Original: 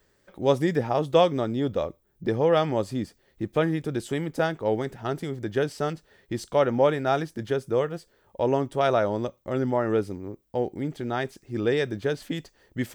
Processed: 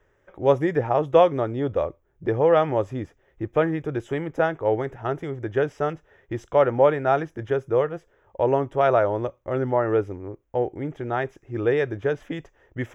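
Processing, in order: boxcar filter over 10 samples; peaking EQ 210 Hz -12 dB 0.74 oct; trim +4.5 dB

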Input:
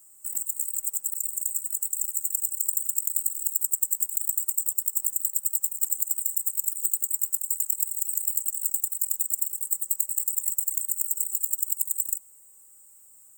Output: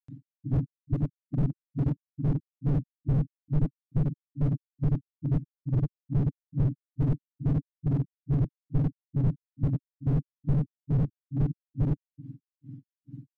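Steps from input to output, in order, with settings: spectrum inverted on a logarithmic axis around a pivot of 1.5 kHz; granulator 231 ms, grains 2.3 per s; slew-rate limiter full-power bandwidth 12 Hz

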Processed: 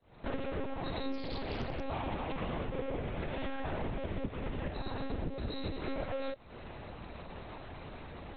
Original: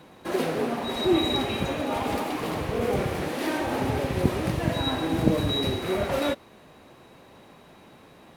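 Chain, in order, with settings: fade-in on the opening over 0.54 s; bass shelf 75 Hz +9 dB; compression 16:1, threshold -37 dBFS, peak gain reduction 24.5 dB; monotone LPC vocoder at 8 kHz 270 Hz; 1.12–1.83 s: loudspeaker Doppler distortion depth 0.57 ms; trim +4.5 dB

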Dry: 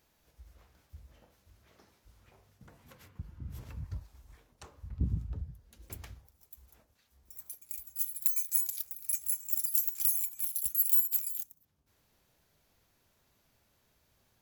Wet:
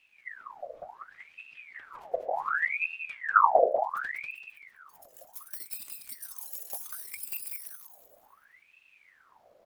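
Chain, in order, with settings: tilt EQ -3 dB/octave; granular stretch 0.67×, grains 37 ms; feedback delay 193 ms, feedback 37%, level -3 dB; ring modulator with a swept carrier 1.6 kHz, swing 65%, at 0.68 Hz; trim +4.5 dB

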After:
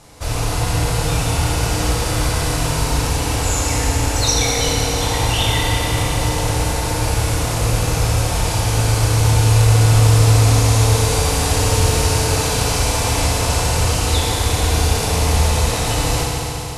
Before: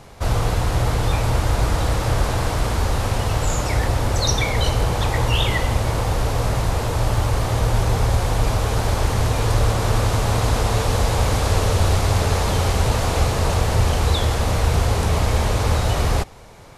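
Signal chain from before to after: rattle on loud lows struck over -19 dBFS, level -23 dBFS; low-pass 12 kHz 24 dB/octave; treble shelf 4.4 kHz +12 dB; FDN reverb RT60 3.9 s, high-frequency decay 0.9×, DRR -4.5 dB; trim -5 dB

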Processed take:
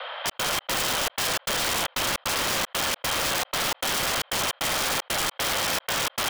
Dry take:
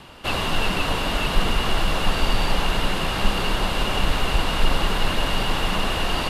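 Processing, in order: on a send: echo whose repeats swap between lows and highs 283 ms, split 990 Hz, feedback 70%, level -6.5 dB; on the sum: mistuned SSB +350 Hz 160–3300 Hz; trance gate "xxx.xx.x" 153 bpm -60 dB; integer overflow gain 20.5 dB; level flattener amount 50%

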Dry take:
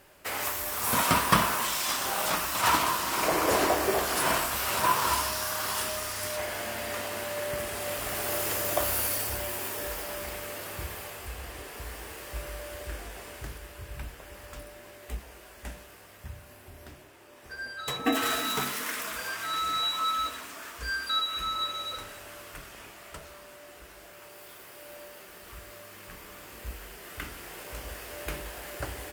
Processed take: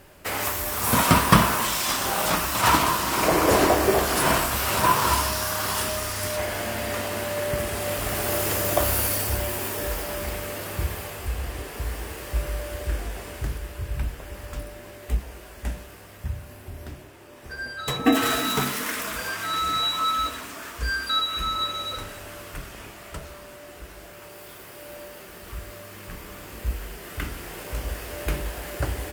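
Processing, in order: bass shelf 310 Hz +8.5 dB; trim +4 dB

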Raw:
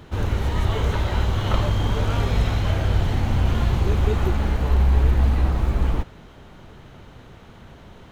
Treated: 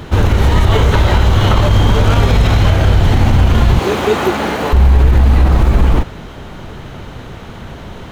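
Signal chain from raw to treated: 3.79–4.73 s: high-pass 280 Hz 12 dB/octave; loudness maximiser +15.5 dB; trim -1 dB

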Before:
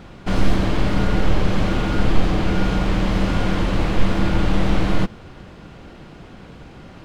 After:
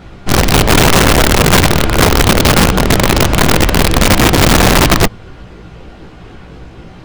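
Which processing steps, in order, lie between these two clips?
chorus voices 6, 0.66 Hz, delay 17 ms, depth 1.6 ms; integer overflow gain 12.5 dB; trim +8.5 dB

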